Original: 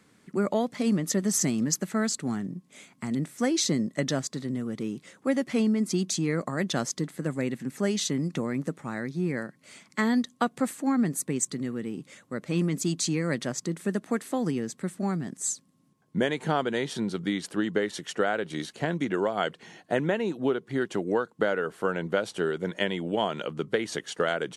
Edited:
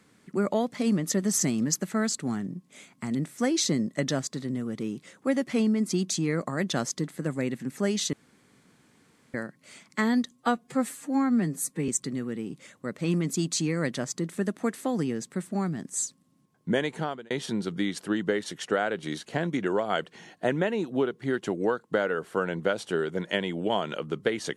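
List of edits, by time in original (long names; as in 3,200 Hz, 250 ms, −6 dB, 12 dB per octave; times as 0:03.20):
0:08.13–0:09.34: fill with room tone
0:10.31–0:11.36: time-stretch 1.5×
0:16.33–0:16.78: fade out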